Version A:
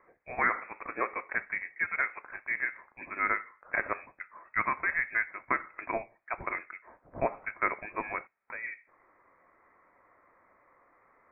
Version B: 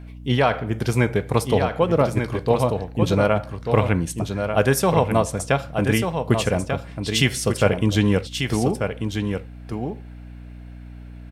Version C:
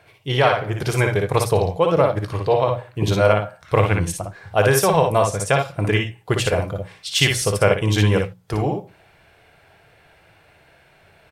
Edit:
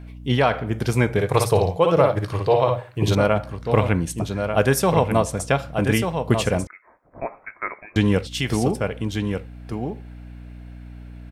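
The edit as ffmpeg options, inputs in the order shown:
-filter_complex "[1:a]asplit=3[a][b][c];[a]atrim=end=1.182[d];[2:a]atrim=start=1.178:end=3.152[e];[b]atrim=start=3.148:end=6.672[f];[0:a]atrim=start=6.668:end=7.962[g];[c]atrim=start=7.958[h];[d][e]acrossfade=d=0.004:c1=hsin:c2=hsin[i];[i][f]acrossfade=d=0.004:c1=hsin:c2=hsin[j];[j][g]acrossfade=d=0.004:c1=hsin:c2=hsin[k];[k][h]acrossfade=d=0.004:c1=hsin:c2=hsin"

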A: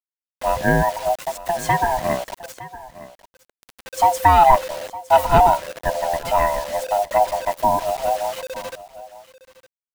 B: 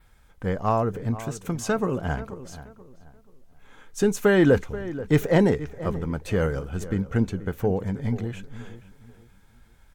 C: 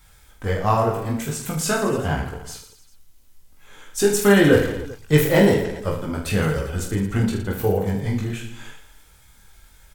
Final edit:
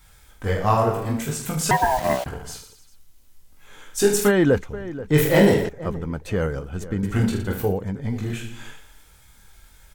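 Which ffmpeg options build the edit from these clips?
-filter_complex "[1:a]asplit=3[a][b][c];[2:a]asplit=5[d][e][f][g][h];[d]atrim=end=1.712[i];[0:a]atrim=start=1.708:end=2.262[j];[e]atrim=start=2.258:end=4.32[k];[a]atrim=start=4.26:end=5.19[l];[f]atrim=start=5.13:end=5.692[m];[b]atrim=start=5.688:end=7.032[n];[g]atrim=start=7.028:end=7.81[o];[c]atrim=start=7.57:end=8.31[p];[h]atrim=start=8.07[q];[i][j]acrossfade=d=0.004:c1=hsin:c2=hsin[r];[r][k]acrossfade=d=0.004:c1=hsin:c2=hsin[s];[s][l]acrossfade=d=0.06:c1=tri:c2=tri[t];[t][m]acrossfade=d=0.06:c1=tri:c2=tri[u];[u][n]acrossfade=d=0.004:c1=hsin:c2=hsin[v];[v][o]acrossfade=d=0.004:c1=hsin:c2=hsin[w];[w][p]acrossfade=d=0.24:c1=tri:c2=tri[x];[x][q]acrossfade=d=0.24:c1=tri:c2=tri"

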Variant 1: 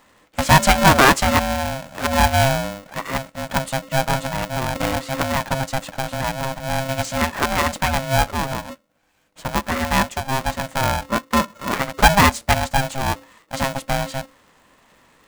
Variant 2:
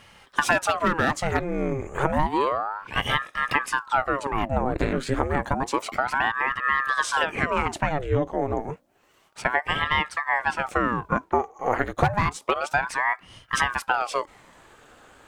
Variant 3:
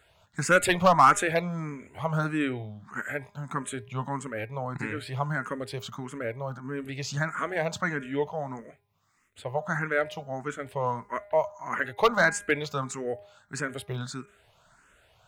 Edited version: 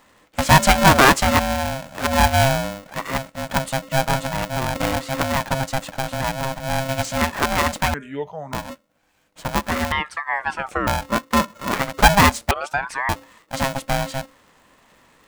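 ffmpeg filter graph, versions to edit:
-filter_complex "[1:a]asplit=2[a][b];[0:a]asplit=4[c][d][e][f];[c]atrim=end=7.942[g];[2:a]atrim=start=7.938:end=8.532[h];[d]atrim=start=8.528:end=9.922[i];[a]atrim=start=9.918:end=10.872[j];[e]atrim=start=10.868:end=12.512[k];[b]atrim=start=12.508:end=13.092[l];[f]atrim=start=13.088[m];[g][h]acrossfade=d=0.004:c1=hsin:c2=hsin[n];[n][i]acrossfade=d=0.004:c1=hsin:c2=hsin[o];[o][j]acrossfade=d=0.004:c1=hsin:c2=hsin[p];[p][k]acrossfade=d=0.004:c1=hsin:c2=hsin[q];[q][l]acrossfade=d=0.004:c1=hsin:c2=hsin[r];[r][m]acrossfade=d=0.004:c1=hsin:c2=hsin"

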